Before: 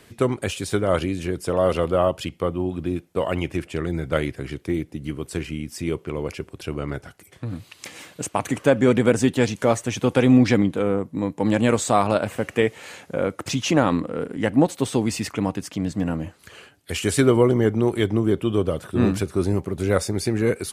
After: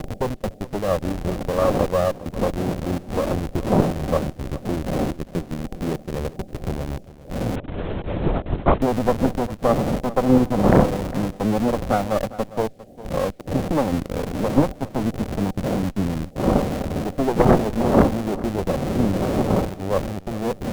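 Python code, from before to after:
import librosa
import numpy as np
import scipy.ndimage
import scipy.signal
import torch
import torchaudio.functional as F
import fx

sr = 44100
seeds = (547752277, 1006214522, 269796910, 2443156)

p1 = fx.dmg_wind(x, sr, seeds[0], corner_hz=600.0, level_db=-24.0)
p2 = fx.highpass(p1, sr, hz=130.0, slope=24, at=(5.13, 6.15))
p3 = fx.transient(p2, sr, attack_db=4, sustain_db=-7)
p4 = scipy.signal.sosfilt(scipy.signal.cheby1(6, 6, 790.0, 'lowpass', fs=sr, output='sos'), p3)
p5 = fx.quant_dither(p4, sr, seeds[1], bits=10, dither='none')
p6 = fx.schmitt(p5, sr, flips_db=-31.0)
p7 = p5 + F.gain(torch.from_numpy(p6), -4.5).numpy()
p8 = fx.cheby_harmonics(p7, sr, harmonics=(4,), levels_db=(-8,), full_scale_db=-1.5)
p9 = p8 + fx.echo_single(p8, sr, ms=404, db=-17.5, dry=0)
p10 = fx.lpc_vocoder(p9, sr, seeds[2], excitation='whisper', order=8, at=(7.56, 8.82))
y = F.gain(torch.from_numpy(p10), -2.5).numpy()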